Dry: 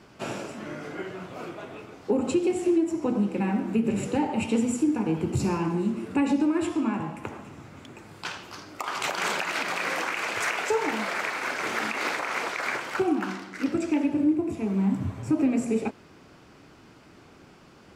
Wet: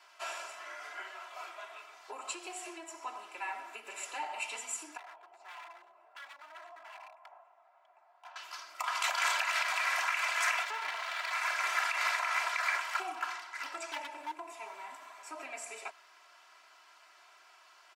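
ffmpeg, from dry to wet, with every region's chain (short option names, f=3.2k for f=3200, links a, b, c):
-filter_complex "[0:a]asettb=1/sr,asplit=3[a][b][c];[a]atrim=end=4.974[d];[b]atrim=start=4.97:end=8.36,asetpts=PTS-STARTPTS,afade=t=in:d=0.004:c=qsin,afade=t=out:st=3.386:d=0.004:c=qsin,bandpass=f=720:t=q:w=4,aeval=exprs='0.0112*(abs(mod(val(0)/0.0112+3,4)-2)-1)':c=same[e];[c]atrim=start=8.356[f];[d][e]acrossfade=d=0.004:c1=hsin:c2=qsin[g];[g][f]acrossfade=d=0.004:c1=qsin:c2=hsin,asettb=1/sr,asplit=3[h][i][j];[h]atrim=end=10.634[k];[i]atrim=start=10.63:end=11.31,asetpts=PTS-STARTPTS,afade=t=in:d=0.004:c=qsin,afade=t=out:st=0.676:d=0.004:c=qsin,lowpass=4.2k,aeval=exprs='max(val(0),0)':c=same[l];[j]atrim=start=11.306[m];[k][l]acrossfade=d=0.004:c1=hsin:c2=qsin[n];[n][m]acrossfade=d=0.004:c1=qsin:c2=hsin,asettb=1/sr,asplit=3[o][p][q];[o]atrim=end=13.484[r];[p]atrim=start=13.48:end=14.76,asetpts=PTS-STARTPTS,afade=t=in:d=0.004:c=qsin,afade=t=out:st=1.276:d=0.004:c=qsin,equalizer=f=910:w=4.7:g=8.5,aeval=exprs='0.126*(abs(mod(val(0)/0.126+3,4)-2)-1)':c=same[s];[q]atrim=start=14.756[t];[r][s]acrossfade=d=0.004:c1=hsin:c2=qsin[u];[u][t]acrossfade=d=0.004:c1=qsin:c2=hsin,highpass=f=800:w=0.5412,highpass=f=800:w=1.3066,aecho=1:1:3:0.83,volume=-4dB"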